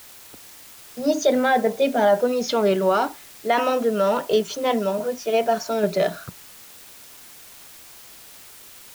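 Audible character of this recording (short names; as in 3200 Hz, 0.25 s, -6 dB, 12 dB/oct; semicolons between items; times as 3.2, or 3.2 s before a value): tremolo saw down 1.2 Hz, depth 35%; a quantiser's noise floor 8-bit, dither triangular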